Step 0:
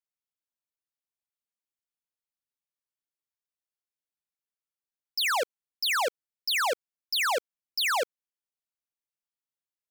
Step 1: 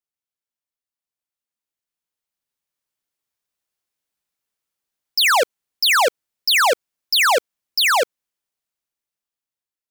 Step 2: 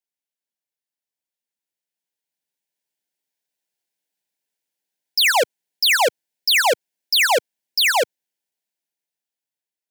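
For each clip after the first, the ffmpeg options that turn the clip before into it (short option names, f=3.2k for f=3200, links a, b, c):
-af "dynaudnorm=f=930:g=5:m=11dB"
-filter_complex "[0:a]acrossover=split=120|4100[a][b][c];[a]acrusher=bits=4:mix=0:aa=0.000001[d];[d][b][c]amix=inputs=3:normalize=0,asuperstop=centerf=1200:order=4:qfactor=2.6"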